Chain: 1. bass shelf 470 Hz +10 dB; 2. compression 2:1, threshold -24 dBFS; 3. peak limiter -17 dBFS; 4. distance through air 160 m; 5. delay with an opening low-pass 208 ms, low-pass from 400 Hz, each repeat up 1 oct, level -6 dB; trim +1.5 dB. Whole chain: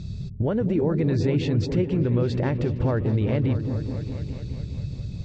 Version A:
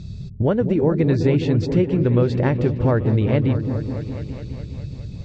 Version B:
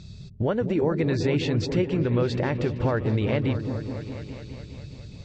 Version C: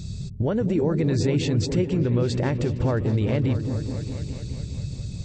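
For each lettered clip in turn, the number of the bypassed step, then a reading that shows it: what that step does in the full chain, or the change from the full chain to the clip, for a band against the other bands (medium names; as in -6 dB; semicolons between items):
3, mean gain reduction 2.0 dB; 1, 125 Hz band -6.5 dB; 4, 4 kHz band +4.5 dB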